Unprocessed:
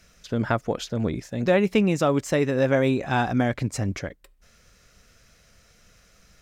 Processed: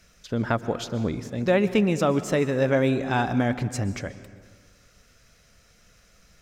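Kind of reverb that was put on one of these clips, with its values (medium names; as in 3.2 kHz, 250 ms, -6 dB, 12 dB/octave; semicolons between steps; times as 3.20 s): plate-style reverb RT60 1.6 s, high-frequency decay 0.65×, pre-delay 110 ms, DRR 13.5 dB; trim -1 dB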